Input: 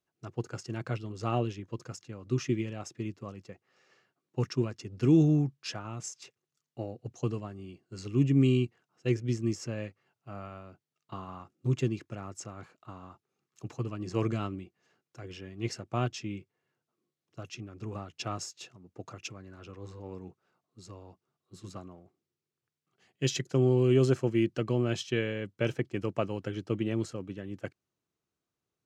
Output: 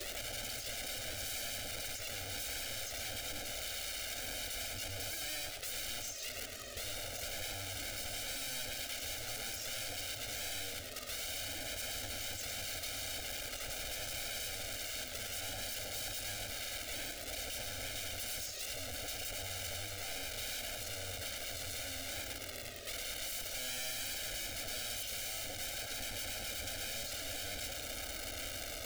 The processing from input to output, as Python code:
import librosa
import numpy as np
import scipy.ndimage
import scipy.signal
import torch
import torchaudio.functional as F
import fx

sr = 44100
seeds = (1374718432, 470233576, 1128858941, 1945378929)

y = x + 0.5 * 10.0 ** (-35.5 / 20.0) * np.sign(x)
y = fx.lowpass(y, sr, hz=1200.0, slope=6)
y = fx.low_shelf(y, sr, hz=86.0, db=-9.0)
y = y + 0.98 * np.pad(y, (int(3.2 * sr / 1000.0), 0))[:len(y)]
y = fx.dynamic_eq(y, sr, hz=350.0, q=1.3, threshold_db=-36.0, ratio=4.0, max_db=-4)
y = fx.leveller(y, sr, passes=2)
y = (np.mod(10.0 ** (31.5 / 20.0) * y + 1.0, 2.0) - 1.0) / 10.0 ** (31.5 / 20.0)
y = fx.env_flanger(y, sr, rest_ms=2.2, full_db=-22.0)
y = fx.fixed_phaser(y, sr, hz=410.0, stages=4)
y = y + 10.0 ** (-6.0 / 20.0) * np.pad(y, (int(107 * sr / 1000.0), 0))[:len(y)]
y = fx.band_squash(y, sr, depth_pct=40)